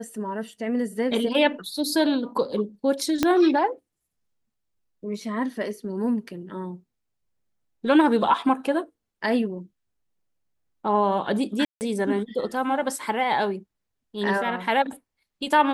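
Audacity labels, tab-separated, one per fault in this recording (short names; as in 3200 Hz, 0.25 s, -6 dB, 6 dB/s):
3.230000	3.230000	pop -6 dBFS
11.650000	11.810000	gap 0.159 s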